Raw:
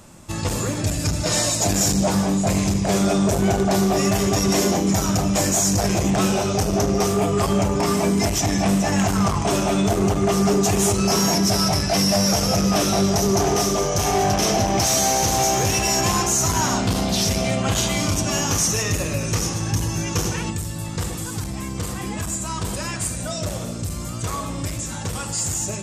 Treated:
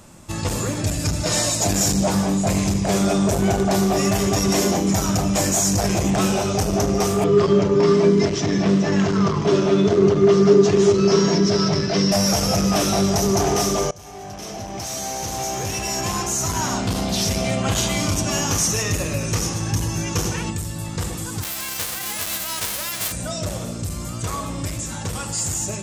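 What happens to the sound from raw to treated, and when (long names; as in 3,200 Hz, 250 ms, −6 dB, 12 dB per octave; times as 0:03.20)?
0:07.24–0:12.12: loudspeaker in its box 120–5,300 Hz, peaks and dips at 160 Hz +7 dB, 400 Hz +10 dB, 770 Hz −10 dB, 2,500 Hz −4 dB
0:13.91–0:17.66: fade in, from −23 dB
0:21.42–0:23.11: spectral envelope flattened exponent 0.1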